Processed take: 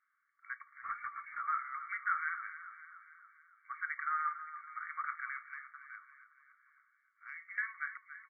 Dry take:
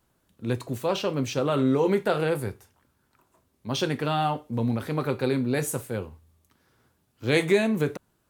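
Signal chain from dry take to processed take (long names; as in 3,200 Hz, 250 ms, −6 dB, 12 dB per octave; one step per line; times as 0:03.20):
linear-phase brick-wall band-pass 1,100–2,300 Hz
0:05.45–0:07.58: downward compressor 6 to 1, threshold −47 dBFS, peak gain reduction 19.5 dB
on a send: repeating echo 283 ms, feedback 55%, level −12.5 dB
0:00.82–0:01.40: on the sum: linear-prediction vocoder at 8 kHz whisper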